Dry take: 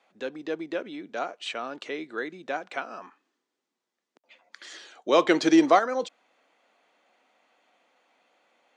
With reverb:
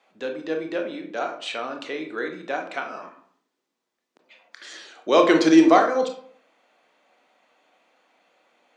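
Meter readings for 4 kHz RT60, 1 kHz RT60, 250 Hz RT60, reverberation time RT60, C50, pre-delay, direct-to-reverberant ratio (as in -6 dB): 0.35 s, 0.60 s, 0.60 s, 0.60 s, 8.0 dB, 22 ms, 3.5 dB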